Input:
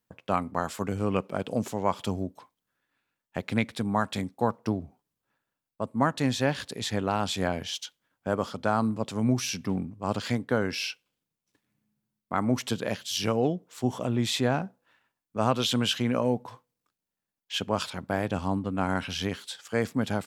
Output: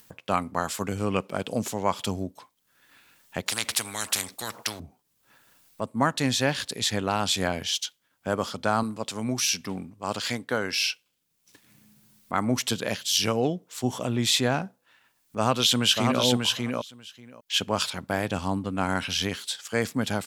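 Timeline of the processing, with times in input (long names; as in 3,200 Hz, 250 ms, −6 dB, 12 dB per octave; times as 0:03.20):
0:03.46–0:04.80: every bin compressed towards the loudest bin 4 to 1
0:08.83–0:10.87: low-shelf EQ 280 Hz −8 dB
0:15.37–0:16.22: delay throw 590 ms, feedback 10%, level −3.5 dB
whole clip: high-shelf EQ 2,100 Hz +9 dB; upward compression, threshold −41 dBFS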